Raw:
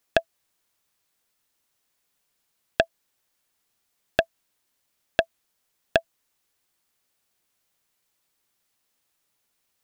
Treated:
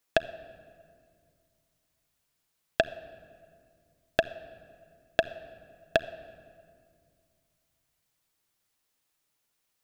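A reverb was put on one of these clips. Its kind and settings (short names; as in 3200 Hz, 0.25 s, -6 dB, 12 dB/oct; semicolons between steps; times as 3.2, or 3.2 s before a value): shoebox room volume 3900 m³, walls mixed, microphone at 0.53 m; gain -3.5 dB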